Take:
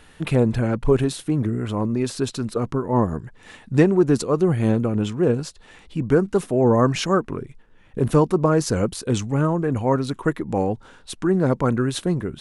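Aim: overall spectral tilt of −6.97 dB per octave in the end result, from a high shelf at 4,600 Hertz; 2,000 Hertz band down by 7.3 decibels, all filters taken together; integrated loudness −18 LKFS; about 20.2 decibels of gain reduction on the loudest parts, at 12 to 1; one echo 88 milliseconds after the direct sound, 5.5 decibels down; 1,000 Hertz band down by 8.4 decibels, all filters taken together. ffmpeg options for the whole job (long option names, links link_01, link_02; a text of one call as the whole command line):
ffmpeg -i in.wav -af "equalizer=frequency=1000:width_type=o:gain=-9,equalizer=frequency=2000:width_type=o:gain=-5,highshelf=frequency=4600:gain=-7,acompressor=threshold=-33dB:ratio=12,aecho=1:1:88:0.531,volume=19.5dB" out.wav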